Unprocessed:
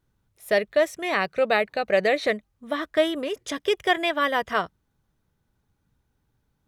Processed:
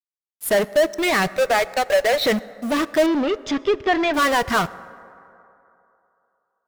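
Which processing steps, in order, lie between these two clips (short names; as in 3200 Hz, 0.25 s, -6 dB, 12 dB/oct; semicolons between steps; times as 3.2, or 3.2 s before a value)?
per-bin expansion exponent 1.5; treble ducked by the level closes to 2100 Hz, closed at -19.5 dBFS; 1.37–2.24 Chebyshev high-pass 550 Hz, order 3; in parallel at -7.5 dB: fuzz box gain 44 dB, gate -51 dBFS; on the sum: bit-crush 7-bit; 3.06–4.14 air absorption 190 m; reverb RT60 3.0 s, pre-delay 6 ms, DRR 16.5 dB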